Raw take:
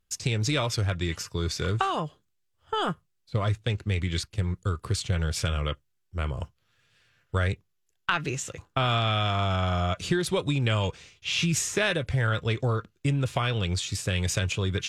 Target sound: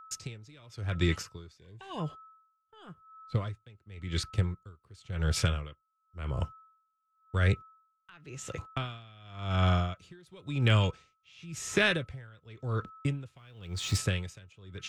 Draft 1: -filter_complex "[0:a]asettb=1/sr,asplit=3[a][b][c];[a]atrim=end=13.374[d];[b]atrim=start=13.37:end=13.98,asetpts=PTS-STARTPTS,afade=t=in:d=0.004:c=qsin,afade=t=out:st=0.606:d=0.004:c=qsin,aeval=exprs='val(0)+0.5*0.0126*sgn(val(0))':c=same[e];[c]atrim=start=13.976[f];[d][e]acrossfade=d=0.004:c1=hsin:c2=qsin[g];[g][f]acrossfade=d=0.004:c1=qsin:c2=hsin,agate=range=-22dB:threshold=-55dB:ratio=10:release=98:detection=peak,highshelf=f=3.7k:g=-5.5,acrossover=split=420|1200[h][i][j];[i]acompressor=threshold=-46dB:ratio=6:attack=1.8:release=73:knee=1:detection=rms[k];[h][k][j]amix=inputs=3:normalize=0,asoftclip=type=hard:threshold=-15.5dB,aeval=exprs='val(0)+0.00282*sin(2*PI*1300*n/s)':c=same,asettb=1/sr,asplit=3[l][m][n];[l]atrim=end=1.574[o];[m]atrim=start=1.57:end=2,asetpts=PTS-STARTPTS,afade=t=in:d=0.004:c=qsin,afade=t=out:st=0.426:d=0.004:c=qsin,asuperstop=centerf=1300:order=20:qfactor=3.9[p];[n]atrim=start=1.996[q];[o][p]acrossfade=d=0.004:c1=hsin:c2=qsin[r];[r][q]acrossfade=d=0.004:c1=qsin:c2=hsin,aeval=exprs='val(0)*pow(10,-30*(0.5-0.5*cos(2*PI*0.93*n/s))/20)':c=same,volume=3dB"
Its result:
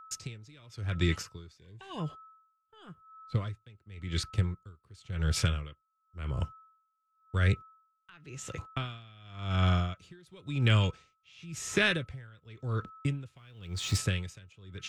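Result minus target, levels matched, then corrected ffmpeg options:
compressor: peak gain reduction +7.5 dB
-filter_complex "[0:a]asettb=1/sr,asplit=3[a][b][c];[a]atrim=end=13.374[d];[b]atrim=start=13.37:end=13.98,asetpts=PTS-STARTPTS,afade=t=in:d=0.004:c=qsin,afade=t=out:st=0.606:d=0.004:c=qsin,aeval=exprs='val(0)+0.5*0.0126*sgn(val(0))':c=same[e];[c]atrim=start=13.976[f];[d][e]acrossfade=d=0.004:c1=hsin:c2=qsin[g];[g][f]acrossfade=d=0.004:c1=qsin:c2=hsin,agate=range=-22dB:threshold=-55dB:ratio=10:release=98:detection=peak,highshelf=f=3.7k:g=-5.5,acrossover=split=420|1200[h][i][j];[i]acompressor=threshold=-37dB:ratio=6:attack=1.8:release=73:knee=1:detection=rms[k];[h][k][j]amix=inputs=3:normalize=0,asoftclip=type=hard:threshold=-15.5dB,aeval=exprs='val(0)+0.00282*sin(2*PI*1300*n/s)':c=same,asettb=1/sr,asplit=3[l][m][n];[l]atrim=end=1.574[o];[m]atrim=start=1.57:end=2,asetpts=PTS-STARTPTS,afade=t=in:d=0.004:c=qsin,afade=t=out:st=0.426:d=0.004:c=qsin,asuperstop=centerf=1300:order=20:qfactor=3.9[p];[n]atrim=start=1.996[q];[o][p]acrossfade=d=0.004:c1=hsin:c2=qsin[r];[r][q]acrossfade=d=0.004:c1=qsin:c2=hsin,aeval=exprs='val(0)*pow(10,-30*(0.5-0.5*cos(2*PI*0.93*n/s))/20)':c=same,volume=3dB"

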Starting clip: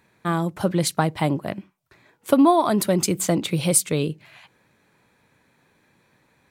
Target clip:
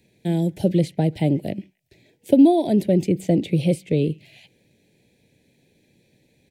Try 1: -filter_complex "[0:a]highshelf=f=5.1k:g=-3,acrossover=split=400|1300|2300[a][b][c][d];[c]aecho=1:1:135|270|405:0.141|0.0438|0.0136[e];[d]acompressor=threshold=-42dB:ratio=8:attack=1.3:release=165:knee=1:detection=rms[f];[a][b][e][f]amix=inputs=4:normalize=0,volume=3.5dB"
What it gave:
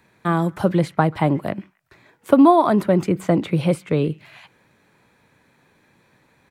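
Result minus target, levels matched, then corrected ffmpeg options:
1000 Hz band +10.0 dB
-filter_complex "[0:a]asuperstop=centerf=1200:order=4:qfactor=0.61,highshelf=f=5.1k:g=-3,acrossover=split=400|1300|2300[a][b][c][d];[c]aecho=1:1:135|270|405:0.141|0.0438|0.0136[e];[d]acompressor=threshold=-42dB:ratio=8:attack=1.3:release=165:knee=1:detection=rms[f];[a][b][e][f]amix=inputs=4:normalize=0,volume=3.5dB"

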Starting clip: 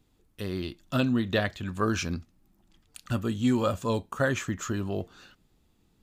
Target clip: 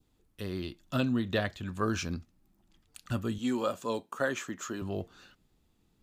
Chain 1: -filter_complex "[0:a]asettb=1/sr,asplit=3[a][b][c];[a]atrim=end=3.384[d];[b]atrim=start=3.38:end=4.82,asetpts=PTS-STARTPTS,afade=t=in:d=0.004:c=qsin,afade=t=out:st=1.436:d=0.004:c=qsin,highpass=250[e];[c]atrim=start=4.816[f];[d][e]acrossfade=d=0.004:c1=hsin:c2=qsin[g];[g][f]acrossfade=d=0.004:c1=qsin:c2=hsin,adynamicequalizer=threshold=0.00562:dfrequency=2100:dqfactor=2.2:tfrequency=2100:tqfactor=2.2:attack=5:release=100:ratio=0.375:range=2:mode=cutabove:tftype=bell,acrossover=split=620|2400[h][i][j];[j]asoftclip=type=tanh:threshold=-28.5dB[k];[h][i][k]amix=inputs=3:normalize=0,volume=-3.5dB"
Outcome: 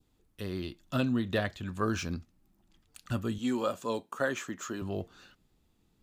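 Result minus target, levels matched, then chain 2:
soft clip: distortion +16 dB
-filter_complex "[0:a]asettb=1/sr,asplit=3[a][b][c];[a]atrim=end=3.384[d];[b]atrim=start=3.38:end=4.82,asetpts=PTS-STARTPTS,afade=t=in:d=0.004:c=qsin,afade=t=out:st=1.436:d=0.004:c=qsin,highpass=250[e];[c]atrim=start=4.816[f];[d][e]acrossfade=d=0.004:c1=hsin:c2=qsin[g];[g][f]acrossfade=d=0.004:c1=qsin:c2=hsin,adynamicequalizer=threshold=0.00562:dfrequency=2100:dqfactor=2.2:tfrequency=2100:tqfactor=2.2:attack=5:release=100:ratio=0.375:range=2:mode=cutabove:tftype=bell,acrossover=split=620|2400[h][i][j];[j]asoftclip=type=tanh:threshold=-17dB[k];[h][i][k]amix=inputs=3:normalize=0,volume=-3.5dB"

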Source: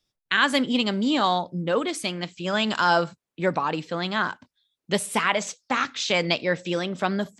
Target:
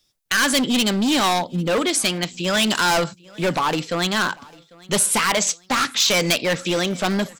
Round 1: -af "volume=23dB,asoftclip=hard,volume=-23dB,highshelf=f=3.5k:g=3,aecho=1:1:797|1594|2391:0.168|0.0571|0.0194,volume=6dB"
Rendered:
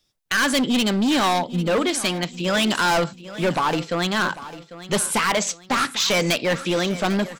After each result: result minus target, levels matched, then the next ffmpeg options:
echo-to-direct +9 dB; 8000 Hz band -3.5 dB
-af "volume=23dB,asoftclip=hard,volume=-23dB,highshelf=f=3.5k:g=3,aecho=1:1:797|1594:0.0596|0.0203,volume=6dB"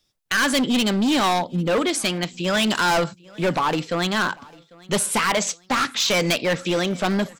8000 Hz band -3.5 dB
-af "volume=23dB,asoftclip=hard,volume=-23dB,highshelf=f=3.5k:g=9,aecho=1:1:797|1594:0.0596|0.0203,volume=6dB"

